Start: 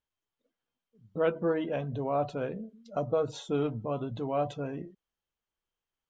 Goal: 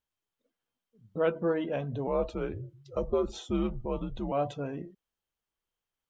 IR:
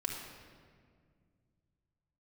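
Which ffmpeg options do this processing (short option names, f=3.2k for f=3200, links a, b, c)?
-filter_complex "[0:a]asettb=1/sr,asplit=3[a][b][c];[a]atrim=end=2.074[d];[b]atrim=start=2.07:end=4.32,asetpts=PTS-STARTPTS,afade=t=in:d=0.004:c=qsin,afade=t=out:st=2.246:d=0.004:c=qsin,afreqshift=-91[e];[c]atrim=start=4.316[f];[d][e]acrossfade=d=0.004:c1=hsin:c2=qsin[g];[g][f]acrossfade=d=0.004:c1=qsin:c2=hsin"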